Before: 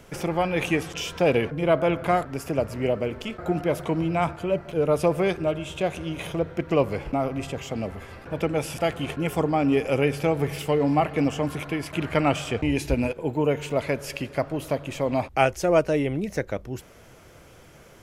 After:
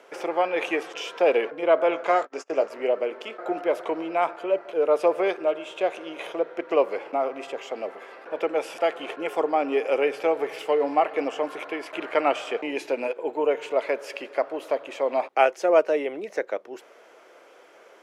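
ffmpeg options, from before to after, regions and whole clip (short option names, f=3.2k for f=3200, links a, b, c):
-filter_complex "[0:a]asettb=1/sr,asplit=3[a][b][c];[a]atrim=end=1.914[d];[b]atrim=start=1.91:end=2.7,asetpts=PTS-STARTPTS,afade=t=in:d=0.004:c=qsin,afade=t=out:st=0.786:d=0.004:c=qsin,asplit=2[e][f];[f]adelay=19,volume=-9dB[g];[e][g]amix=inputs=2:normalize=0,atrim=end_sample=34839,agate=range=-32dB:threshold=-35dB:ratio=16:release=100:detection=peak,lowpass=f=6.6k:t=q:w=2.9[h];[c]atrim=start=2.696[i];[d][h]acrossfade=d=0.004:c1=hsin:c2=qsin[j];[j][i]acrossfade=d=0.004:c1=qsin:c2=hsin,highpass=f=390:w=0.5412,highpass=f=390:w=1.3066,aemphasis=mode=reproduction:type=75kf,volume=2.5dB"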